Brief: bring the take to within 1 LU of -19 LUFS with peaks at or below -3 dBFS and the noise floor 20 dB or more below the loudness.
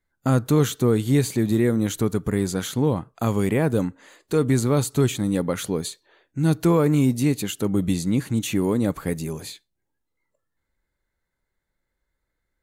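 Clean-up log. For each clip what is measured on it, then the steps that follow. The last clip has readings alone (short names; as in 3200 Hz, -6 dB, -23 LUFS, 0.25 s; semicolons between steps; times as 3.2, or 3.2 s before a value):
loudness -22.5 LUFS; peak -9.5 dBFS; loudness target -19.0 LUFS
-> gain +3.5 dB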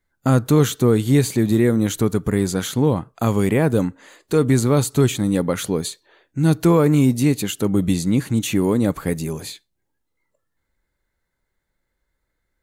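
loudness -19.0 LUFS; peak -6.0 dBFS; noise floor -76 dBFS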